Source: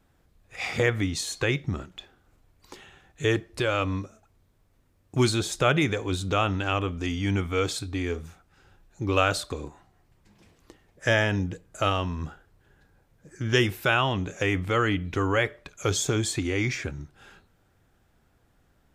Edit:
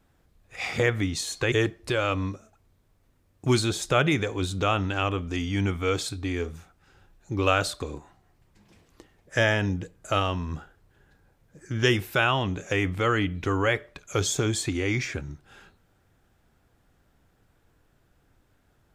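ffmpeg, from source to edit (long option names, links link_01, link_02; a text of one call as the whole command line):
ffmpeg -i in.wav -filter_complex "[0:a]asplit=2[link_01][link_02];[link_01]atrim=end=1.522[link_03];[link_02]atrim=start=3.218[link_04];[link_03][link_04]acrossfade=duration=0.004:curve1=hsin:curve2=hsin" out.wav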